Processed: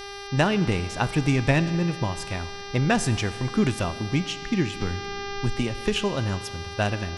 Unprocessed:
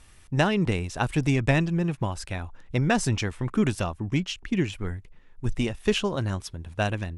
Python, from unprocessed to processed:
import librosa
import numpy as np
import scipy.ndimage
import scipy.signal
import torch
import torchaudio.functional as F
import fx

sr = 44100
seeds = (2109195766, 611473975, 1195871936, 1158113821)

y = fx.rev_schroeder(x, sr, rt60_s=1.9, comb_ms=27, drr_db=14.5)
y = fx.dmg_buzz(y, sr, base_hz=400.0, harmonics=15, level_db=-39.0, tilt_db=-3, odd_only=False)
y = fx.band_squash(y, sr, depth_pct=70, at=(4.81, 5.96))
y = F.gain(torch.from_numpy(y), 1.0).numpy()